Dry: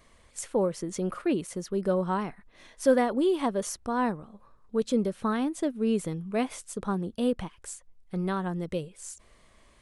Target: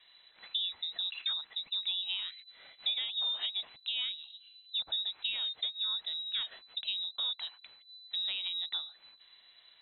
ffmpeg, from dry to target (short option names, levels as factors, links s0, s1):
-filter_complex "[0:a]lowpass=f=3400:t=q:w=0.5098,lowpass=f=3400:t=q:w=0.6013,lowpass=f=3400:t=q:w=0.9,lowpass=f=3400:t=q:w=2.563,afreqshift=-4000,acrossover=split=820|1700[s0][s1][s2];[s0]acompressor=threshold=0.00158:ratio=4[s3];[s1]acompressor=threshold=0.00316:ratio=4[s4];[s2]acompressor=threshold=0.0282:ratio=4[s5];[s3][s4][s5]amix=inputs=3:normalize=0,volume=0.794"